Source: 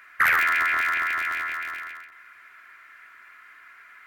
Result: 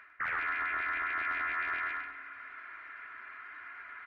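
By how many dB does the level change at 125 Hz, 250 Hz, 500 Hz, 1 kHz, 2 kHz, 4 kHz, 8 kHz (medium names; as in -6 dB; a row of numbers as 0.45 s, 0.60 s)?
no reading, -4.5 dB, -6.5 dB, -8.5 dB, -10.0 dB, -14.0 dB, under -30 dB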